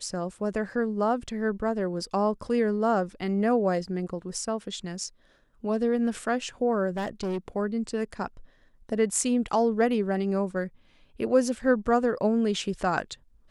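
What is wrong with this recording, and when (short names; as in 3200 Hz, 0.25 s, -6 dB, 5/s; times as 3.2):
6.96–7.38 clipped -26 dBFS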